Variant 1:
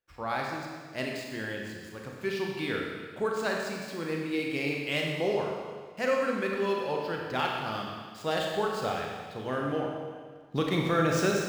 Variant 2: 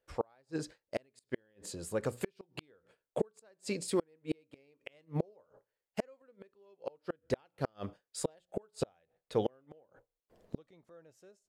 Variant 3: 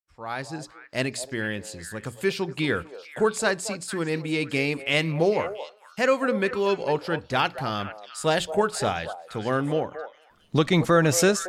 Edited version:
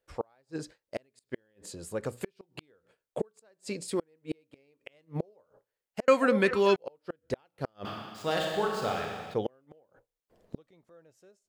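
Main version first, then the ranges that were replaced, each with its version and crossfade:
2
6.08–6.76 s: from 3
7.85–9.34 s: from 1

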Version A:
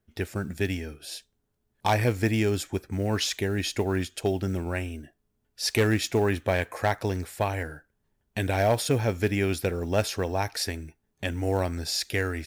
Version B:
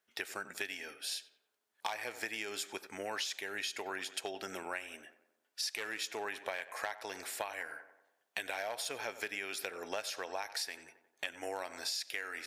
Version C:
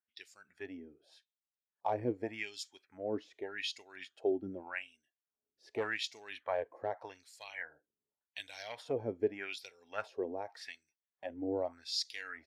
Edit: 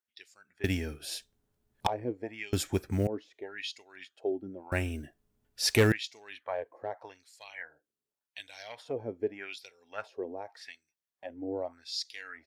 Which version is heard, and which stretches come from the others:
C
0.64–1.87 s: from A
2.53–3.07 s: from A
4.72–5.92 s: from A
not used: B

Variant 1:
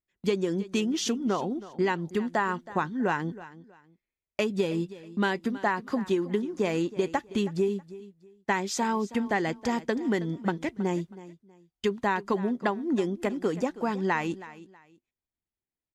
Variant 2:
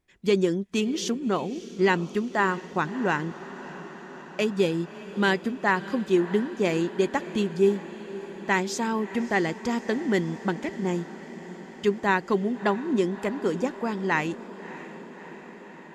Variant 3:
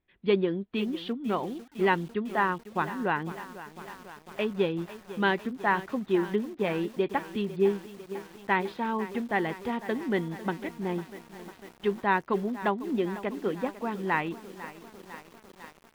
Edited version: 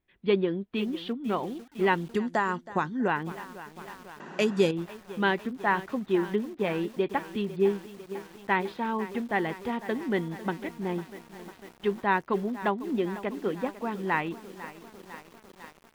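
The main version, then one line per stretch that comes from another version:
3
2.14–3.08 s: from 1
4.20–4.71 s: from 2

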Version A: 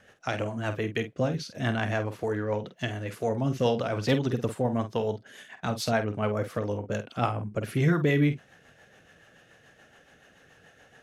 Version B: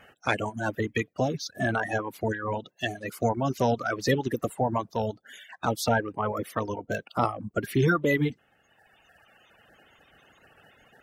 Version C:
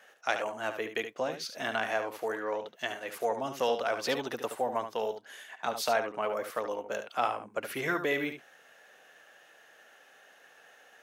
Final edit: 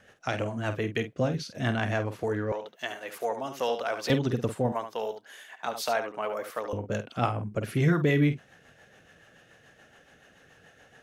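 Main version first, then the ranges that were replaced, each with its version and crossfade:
A
2.52–4.10 s: from C
4.72–6.73 s: from C
not used: B

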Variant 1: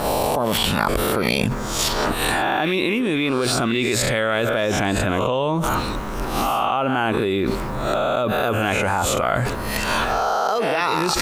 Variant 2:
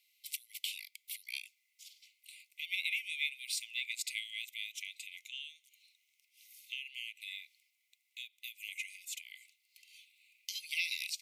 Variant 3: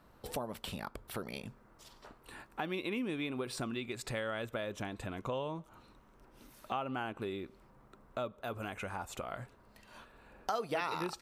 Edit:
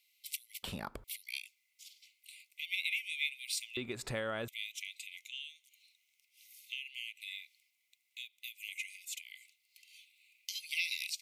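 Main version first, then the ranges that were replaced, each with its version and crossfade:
2
0.63–1.04 s: from 3
3.77–4.48 s: from 3
not used: 1

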